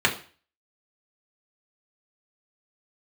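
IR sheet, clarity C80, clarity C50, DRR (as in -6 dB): 16.5 dB, 12.5 dB, -2.5 dB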